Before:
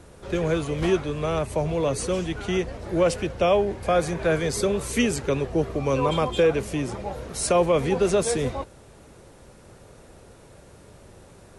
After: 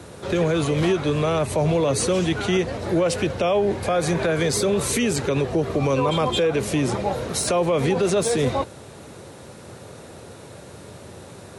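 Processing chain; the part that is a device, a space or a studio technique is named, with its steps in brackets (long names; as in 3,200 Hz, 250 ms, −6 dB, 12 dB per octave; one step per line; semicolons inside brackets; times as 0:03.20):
broadcast voice chain (high-pass filter 82 Hz 24 dB per octave; de-essing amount 50%; downward compressor 3 to 1, threshold −22 dBFS, peak gain reduction 6 dB; parametric band 3,900 Hz +4.5 dB 0.25 octaves; brickwall limiter −21 dBFS, peak gain reduction 8 dB)
level +8.5 dB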